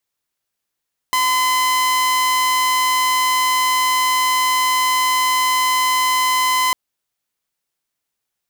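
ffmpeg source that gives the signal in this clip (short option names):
-f lavfi -i "aevalsrc='0.251*(2*mod(1020*t,1)-1)':d=5.6:s=44100"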